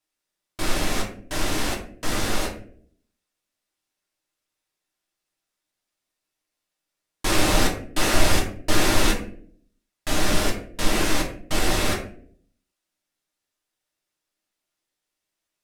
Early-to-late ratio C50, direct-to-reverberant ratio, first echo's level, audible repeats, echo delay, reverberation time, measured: 7.5 dB, −2.5 dB, no echo audible, no echo audible, no echo audible, 0.60 s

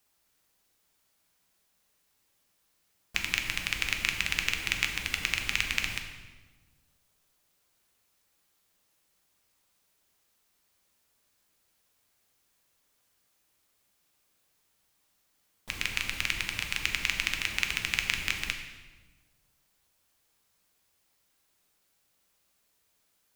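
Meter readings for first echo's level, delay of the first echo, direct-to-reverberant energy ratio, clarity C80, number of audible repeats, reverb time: no echo audible, no echo audible, 3.5 dB, 8.0 dB, no echo audible, 1.3 s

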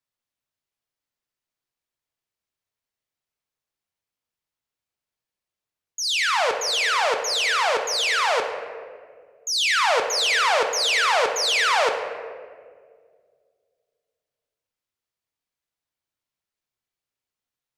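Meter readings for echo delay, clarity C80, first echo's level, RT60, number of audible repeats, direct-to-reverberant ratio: no echo audible, 7.5 dB, no echo audible, 1.9 s, no echo audible, 4.0 dB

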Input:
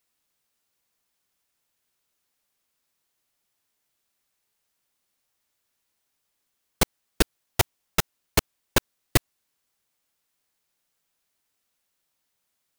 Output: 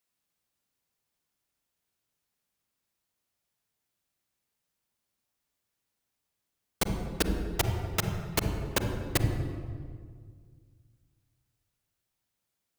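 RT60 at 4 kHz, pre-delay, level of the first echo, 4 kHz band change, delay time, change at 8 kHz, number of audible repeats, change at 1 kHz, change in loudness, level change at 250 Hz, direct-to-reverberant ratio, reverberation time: 1.2 s, 38 ms, no echo audible, −6.0 dB, no echo audible, −6.5 dB, no echo audible, −5.0 dB, −4.5 dB, −1.5 dB, 4.5 dB, 1.9 s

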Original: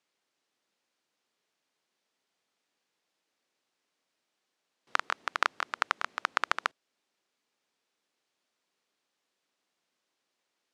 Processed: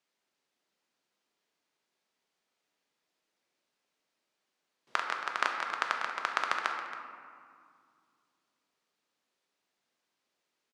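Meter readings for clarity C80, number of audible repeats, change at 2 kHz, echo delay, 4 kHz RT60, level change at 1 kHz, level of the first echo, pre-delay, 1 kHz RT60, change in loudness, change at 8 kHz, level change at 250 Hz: 5.0 dB, 1, −1.0 dB, 275 ms, 1.0 s, −0.5 dB, −14.0 dB, 3 ms, 2.2 s, −1.0 dB, −2.0 dB, 0.0 dB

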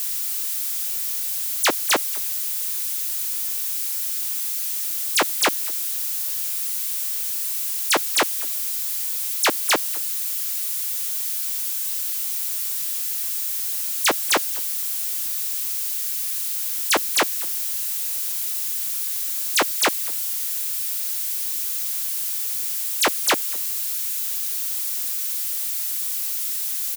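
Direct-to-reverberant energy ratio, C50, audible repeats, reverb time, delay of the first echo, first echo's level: no reverb audible, no reverb audible, 1, no reverb audible, 221 ms, −23.0 dB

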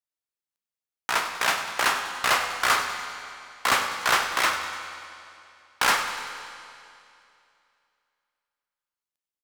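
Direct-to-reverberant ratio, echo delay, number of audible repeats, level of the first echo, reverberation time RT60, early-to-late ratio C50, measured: 4.5 dB, 98 ms, 3, −13.0 dB, 2.6 s, 5.5 dB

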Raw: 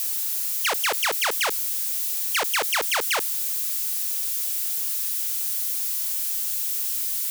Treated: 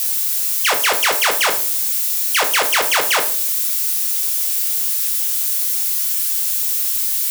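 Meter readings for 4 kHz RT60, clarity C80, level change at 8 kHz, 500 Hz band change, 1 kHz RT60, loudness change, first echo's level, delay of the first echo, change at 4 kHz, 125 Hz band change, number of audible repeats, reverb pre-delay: 0.30 s, 15.0 dB, +7.5 dB, +7.5 dB, 0.40 s, +7.5 dB, no echo audible, no echo audible, +7.5 dB, can't be measured, no echo audible, 9 ms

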